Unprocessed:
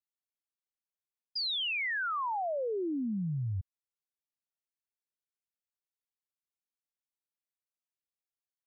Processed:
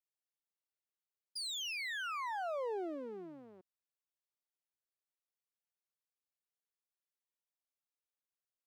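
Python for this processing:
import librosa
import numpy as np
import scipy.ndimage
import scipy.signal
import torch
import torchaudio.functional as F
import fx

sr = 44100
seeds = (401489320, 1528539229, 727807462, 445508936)

y = np.maximum(x, 0.0)
y = scipy.signal.sosfilt(scipy.signal.butter(4, 370.0, 'highpass', fs=sr, output='sos'), y)
y = fx.low_shelf(y, sr, hz=490.0, db=7.5)
y = y * 10.0 ** (-2.5 / 20.0)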